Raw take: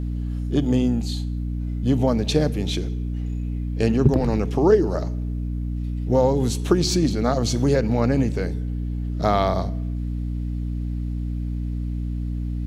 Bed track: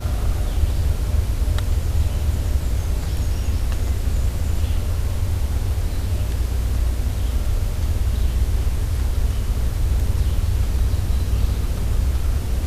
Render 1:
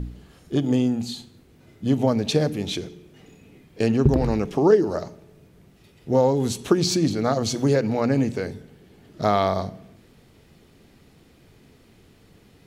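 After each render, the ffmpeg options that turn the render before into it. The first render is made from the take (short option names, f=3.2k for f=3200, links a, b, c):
-af "bandreject=f=60:t=h:w=4,bandreject=f=120:t=h:w=4,bandreject=f=180:t=h:w=4,bandreject=f=240:t=h:w=4,bandreject=f=300:t=h:w=4"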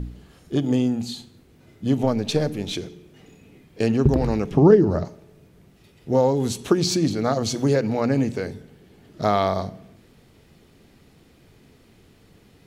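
-filter_complex "[0:a]asettb=1/sr,asplit=3[a][b][c];[a]atrim=end=2.034[d];[b]atrim=start=2.03:end=2.73,asetpts=PTS-STARTPTS,afade=t=in:d=0.004:c=qsin,afade=t=out:st=0.696:d=0.004:c=qsin,aeval=exprs='if(lt(val(0),0),0.708*val(0),val(0))':c=same[e];[c]atrim=start=2.726[f];[d][e]acrossfade=d=0.004:c1=hsin:c2=qsin[g];[g][f]acrossfade=d=0.004:c1=qsin:c2=hsin,asettb=1/sr,asplit=3[h][i][j];[h]atrim=end=4.514[k];[i]atrim=start=4.51:end=5.05,asetpts=PTS-STARTPTS,afade=t=in:d=0.004:c=qsin,afade=t=out:st=0.536:d=0.004:c=qsin,bass=f=250:g=13,treble=f=4k:g=-8[l];[j]atrim=start=5.046[m];[k][l]acrossfade=d=0.004:c1=hsin:c2=qsin[n];[n][m]acrossfade=d=0.004:c1=qsin:c2=hsin"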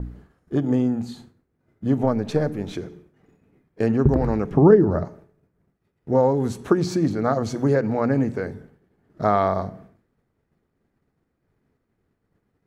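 -af "agate=range=-33dB:threshold=-41dB:ratio=3:detection=peak,highshelf=f=2.2k:t=q:w=1.5:g=-9.5"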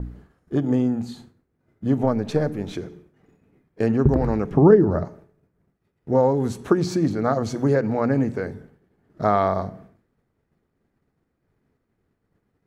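-af anull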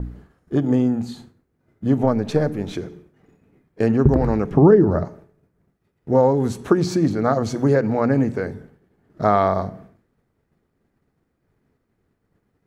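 -af "volume=2.5dB,alimiter=limit=-3dB:level=0:latency=1"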